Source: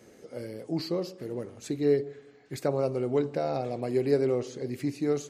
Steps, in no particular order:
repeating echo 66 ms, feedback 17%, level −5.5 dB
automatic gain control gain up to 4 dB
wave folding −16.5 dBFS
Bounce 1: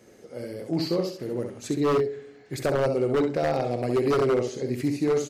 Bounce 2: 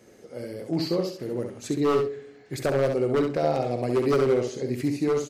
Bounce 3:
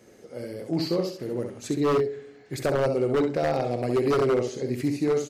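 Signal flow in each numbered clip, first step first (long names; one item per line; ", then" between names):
repeating echo, then automatic gain control, then wave folding
automatic gain control, then wave folding, then repeating echo
automatic gain control, then repeating echo, then wave folding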